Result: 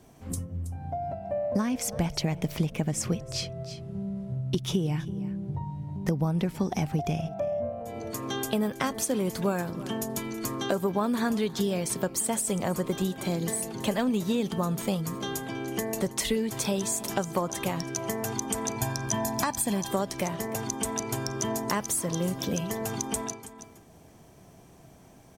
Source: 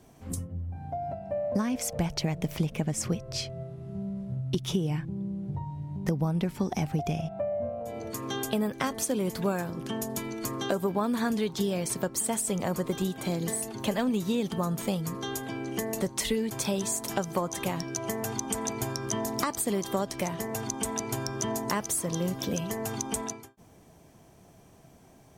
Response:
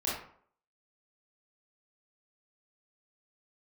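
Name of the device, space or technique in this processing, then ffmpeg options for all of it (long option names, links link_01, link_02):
ducked delay: -filter_complex "[0:a]asettb=1/sr,asplit=3[link_01][link_02][link_03];[link_01]atrim=end=18.764[link_04];[link_02]atrim=start=18.76:end=19.91,asetpts=PTS-STARTPTS,afade=type=in:duration=0.004:curve=qsin,afade=type=out:start_time=1.146:duration=0.004:curve=qsin,aecho=1:1:1.2:0.58,atrim=end_sample=50715[link_05];[link_03]atrim=start=19.906[link_06];[link_04][link_05]acrossfade=duration=0.004:curve1=hsin:curve2=qsin[link_07];[link_07][link_06]acrossfade=duration=0.004:curve1=qsin:curve2=hsin,asplit=3[link_08][link_09][link_10];[link_09]adelay=324,volume=-4.5dB[link_11];[link_10]apad=whole_len=1133300[link_12];[link_11][link_12]sidechaincompress=threshold=-41dB:ratio=6:attack=5.9:release=606[link_13];[link_08][link_13]amix=inputs=2:normalize=0,volume=1dB"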